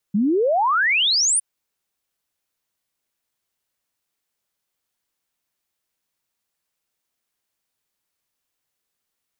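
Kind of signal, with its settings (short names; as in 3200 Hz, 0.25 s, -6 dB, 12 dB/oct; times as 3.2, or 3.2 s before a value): log sweep 190 Hz -> 10000 Hz 1.26 s -15.5 dBFS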